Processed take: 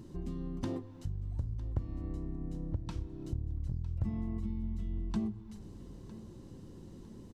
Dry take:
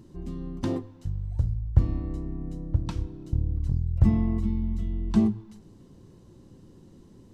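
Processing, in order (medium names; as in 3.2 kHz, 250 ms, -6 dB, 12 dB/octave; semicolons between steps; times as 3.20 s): compression 3:1, threshold -37 dBFS, peak gain reduction 18.5 dB; feedback delay 955 ms, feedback 42%, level -17.5 dB; trim +1 dB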